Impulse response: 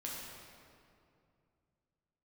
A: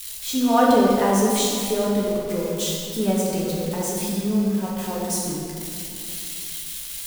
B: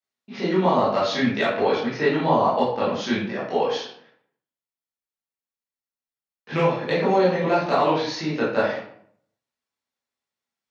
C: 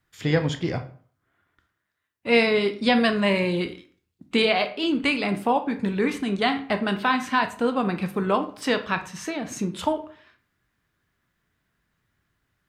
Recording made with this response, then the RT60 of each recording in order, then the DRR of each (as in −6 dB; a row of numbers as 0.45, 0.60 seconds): A; 2.5, 0.60, 0.50 seconds; −4.5, −10.0, 7.5 decibels